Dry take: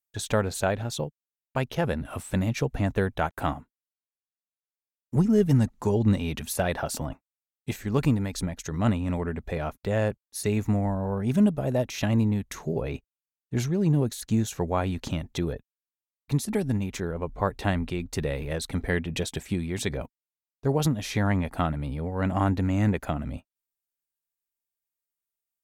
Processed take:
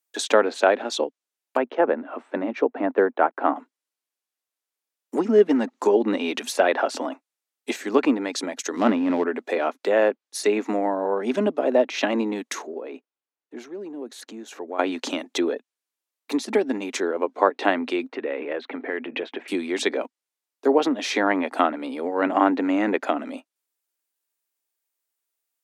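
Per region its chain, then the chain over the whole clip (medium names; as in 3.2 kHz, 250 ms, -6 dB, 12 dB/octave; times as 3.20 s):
1.57–3.56 s: low-pass 1.5 kHz + three bands expanded up and down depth 40%
8.76–9.24 s: dead-time distortion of 0.12 ms + tone controls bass +9 dB, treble -4 dB
12.62–14.79 s: low-pass 1.6 kHz 6 dB/octave + compression 2.5:1, threshold -40 dBFS
18.08–19.48 s: low-pass 2.6 kHz 24 dB/octave + compression 5:1, threshold -29 dBFS
whole clip: steep high-pass 260 Hz 48 dB/octave; low-pass that closes with the level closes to 2.9 kHz, closed at -26 dBFS; trim +8.5 dB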